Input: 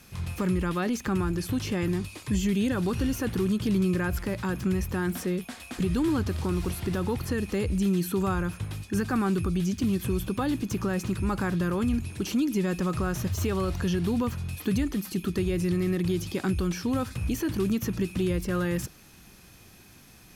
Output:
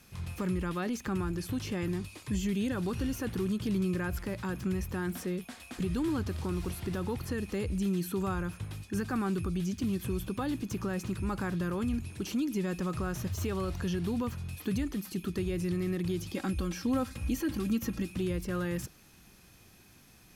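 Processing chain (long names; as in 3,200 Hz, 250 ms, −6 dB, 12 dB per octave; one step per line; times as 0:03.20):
0:16.34–0:18.10: comb filter 3.7 ms, depth 62%
level −5.5 dB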